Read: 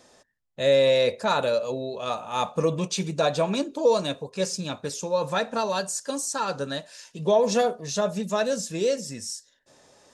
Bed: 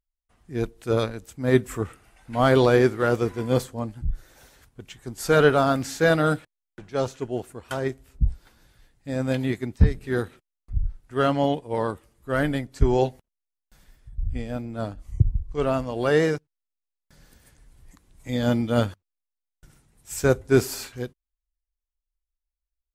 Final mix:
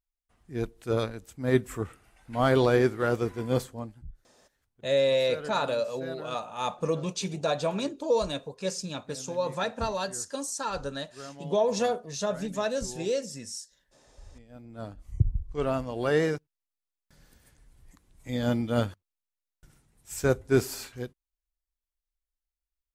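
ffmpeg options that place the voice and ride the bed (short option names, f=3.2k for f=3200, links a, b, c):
-filter_complex "[0:a]adelay=4250,volume=-4.5dB[a];[1:a]volume=13dB,afade=t=out:st=3.66:d=0.47:silence=0.133352,afade=t=in:st=14.48:d=0.67:silence=0.133352[b];[a][b]amix=inputs=2:normalize=0"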